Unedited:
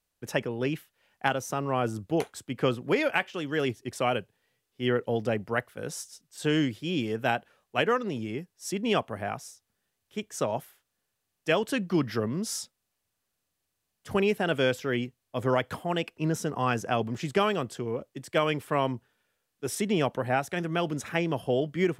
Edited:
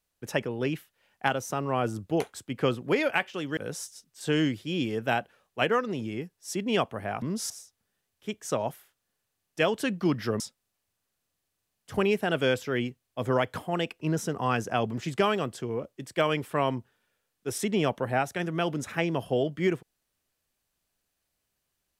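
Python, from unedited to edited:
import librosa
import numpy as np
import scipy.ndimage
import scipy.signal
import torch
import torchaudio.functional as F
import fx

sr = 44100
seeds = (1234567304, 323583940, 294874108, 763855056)

y = fx.edit(x, sr, fx.cut(start_s=3.57, length_s=2.17),
    fx.move(start_s=12.29, length_s=0.28, to_s=9.39), tone=tone)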